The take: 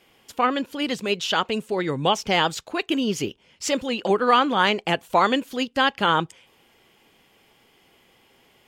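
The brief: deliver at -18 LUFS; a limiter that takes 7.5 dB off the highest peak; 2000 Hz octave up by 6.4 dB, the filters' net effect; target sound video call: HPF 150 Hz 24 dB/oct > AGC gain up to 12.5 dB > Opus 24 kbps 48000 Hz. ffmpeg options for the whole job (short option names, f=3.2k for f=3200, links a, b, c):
-af "equalizer=f=2k:t=o:g=8.5,alimiter=limit=-8dB:level=0:latency=1,highpass=f=150:w=0.5412,highpass=f=150:w=1.3066,dynaudnorm=m=12.5dB,volume=4.5dB" -ar 48000 -c:a libopus -b:a 24k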